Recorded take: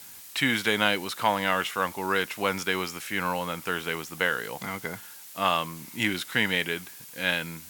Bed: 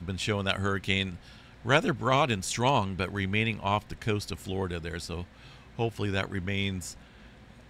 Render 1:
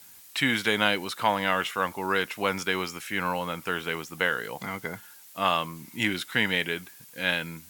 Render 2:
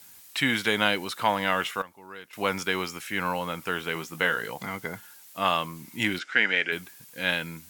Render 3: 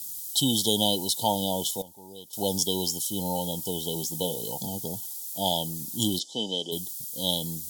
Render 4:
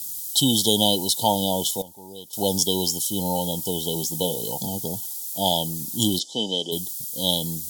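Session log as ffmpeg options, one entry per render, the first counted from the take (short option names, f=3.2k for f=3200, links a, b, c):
-af "afftdn=nr=6:nf=-46"
-filter_complex "[0:a]asettb=1/sr,asplit=3[a][b][c];[a]atrim=end=3.944[d];[b]atrim=start=3.94:end=4.54,asetpts=PTS-STARTPTS,afade=t=in:d=0.004:c=qsin,afade=t=out:st=0.596:d=0.004:c=qsin,asplit=2[e][f];[f]adelay=18,volume=-7dB[g];[e][g]amix=inputs=2:normalize=0,atrim=end_sample=26460[h];[c]atrim=start=4.536[i];[d][h]acrossfade=d=0.004:c1=hsin:c2=qsin[j];[j][i]acrossfade=d=0.004:c1=qsin:c2=hsin,asplit=3[k][l][m];[k]afade=t=out:st=6.18:d=0.02[n];[l]highpass=310,equalizer=f=980:t=q:w=4:g=-8,equalizer=f=1.5k:t=q:w=4:g=8,equalizer=f=2.3k:t=q:w=4:g=4,equalizer=f=3.8k:t=q:w=4:g=-8,lowpass=f=6.3k:w=0.5412,lowpass=f=6.3k:w=1.3066,afade=t=in:st=6.18:d=0.02,afade=t=out:st=6.71:d=0.02[o];[m]afade=t=in:st=6.71:d=0.02[p];[n][o][p]amix=inputs=3:normalize=0,asplit=3[q][r][s];[q]atrim=end=1.82,asetpts=PTS-STARTPTS,afade=t=out:st=1.69:d=0.13:c=log:silence=0.141254[t];[r]atrim=start=1.82:end=2.33,asetpts=PTS-STARTPTS,volume=-17dB[u];[s]atrim=start=2.33,asetpts=PTS-STARTPTS,afade=t=in:d=0.13:c=log:silence=0.141254[v];[t][u][v]concat=n=3:v=0:a=1"
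-af "afftfilt=real='re*(1-between(b*sr/4096,940,3000))':imag='im*(1-between(b*sr/4096,940,3000))':win_size=4096:overlap=0.75,bass=f=250:g=5,treble=f=4k:g=14"
-af "volume=4.5dB"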